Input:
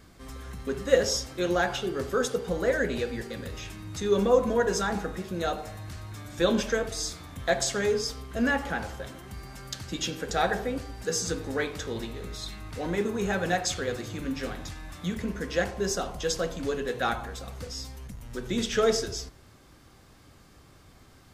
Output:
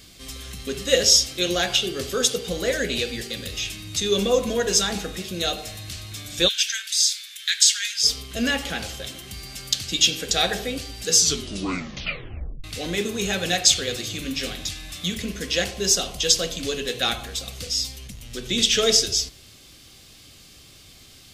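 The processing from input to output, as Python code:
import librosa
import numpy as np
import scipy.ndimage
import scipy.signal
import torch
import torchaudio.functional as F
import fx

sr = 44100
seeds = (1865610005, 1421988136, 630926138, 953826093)

y = fx.ellip_highpass(x, sr, hz=1500.0, order=4, stop_db=50, at=(6.47, 8.03), fade=0.02)
y = fx.high_shelf(y, sr, hz=8000.0, db=-5.0, at=(17.97, 18.63))
y = fx.edit(y, sr, fx.tape_stop(start_s=11.17, length_s=1.47), tone=tone)
y = fx.high_shelf_res(y, sr, hz=2100.0, db=11.5, q=1.5)
y = fx.notch(y, sr, hz=910.0, q=6.2)
y = y * librosa.db_to_amplitude(1.5)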